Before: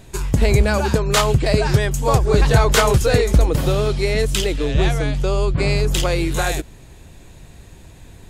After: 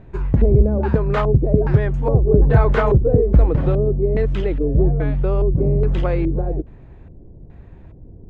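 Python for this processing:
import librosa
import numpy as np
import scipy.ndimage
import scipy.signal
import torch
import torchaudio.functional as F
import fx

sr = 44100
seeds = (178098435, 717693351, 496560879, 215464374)

y = fx.filter_lfo_lowpass(x, sr, shape='square', hz=1.2, low_hz=450.0, high_hz=1900.0, q=1.2)
y = fx.tilt_shelf(y, sr, db=6.0, hz=970.0)
y = y * 10.0 ** (-4.5 / 20.0)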